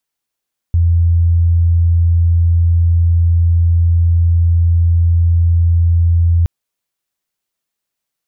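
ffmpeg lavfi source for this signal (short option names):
-f lavfi -i "aevalsrc='0.398*sin(2*PI*84.8*t)':d=5.72:s=44100"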